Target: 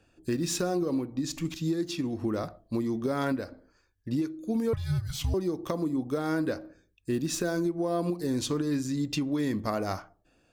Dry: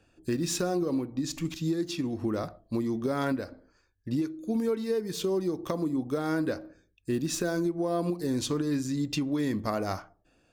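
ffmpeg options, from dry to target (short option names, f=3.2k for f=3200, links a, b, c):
-filter_complex "[0:a]asettb=1/sr,asplit=3[a][b][c];[a]atrim=end=4.734[d];[b]atrim=start=4.73:end=5.34,asetpts=PTS-STARTPTS,afade=t=in:d=0.004:c=qsin,afade=t=out:st=0.606:d=0.004:c=qsin,afreqshift=-310[e];[c]atrim=start=5.336[f];[d][e]acrossfade=d=0.004:c1=hsin:c2=qsin[g];[g][f]acrossfade=d=0.004:c1=qsin:c2=hsin"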